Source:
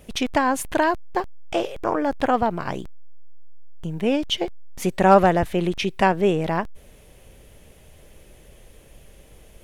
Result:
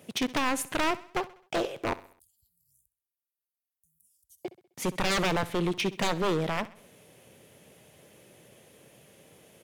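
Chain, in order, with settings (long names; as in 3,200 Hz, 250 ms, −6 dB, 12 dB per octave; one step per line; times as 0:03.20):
0:01.93–0:04.45: inverse Chebyshev band-stop filter 250–2,300 Hz, stop band 80 dB
0:02.22–0:02.56: gain on a spectral selection 1,900–5,100 Hz +12 dB
high-pass filter 120 Hz 24 dB per octave
wave folding −18 dBFS
repeating echo 65 ms, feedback 47%, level −18 dB
level −3 dB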